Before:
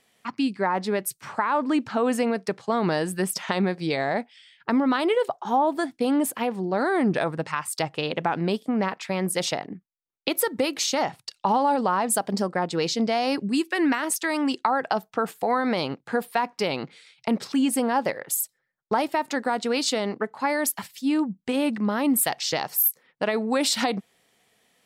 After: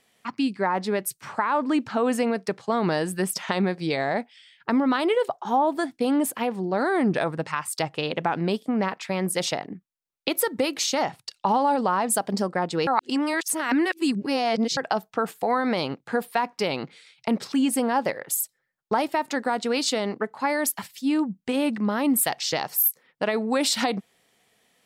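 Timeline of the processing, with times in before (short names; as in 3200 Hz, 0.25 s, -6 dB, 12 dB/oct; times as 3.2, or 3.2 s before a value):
12.87–14.77 reverse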